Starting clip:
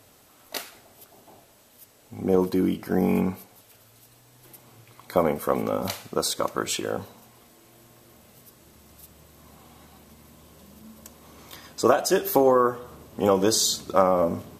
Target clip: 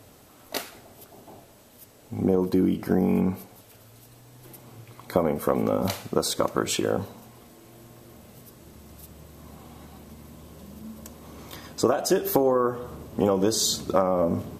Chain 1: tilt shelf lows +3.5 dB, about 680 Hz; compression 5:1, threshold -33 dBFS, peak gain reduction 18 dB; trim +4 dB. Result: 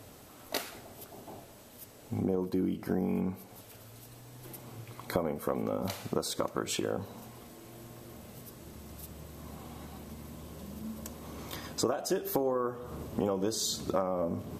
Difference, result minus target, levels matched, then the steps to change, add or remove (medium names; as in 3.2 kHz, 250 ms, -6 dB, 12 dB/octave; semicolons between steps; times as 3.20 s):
compression: peak gain reduction +9 dB
change: compression 5:1, threshold -22 dBFS, peak gain reduction 9.5 dB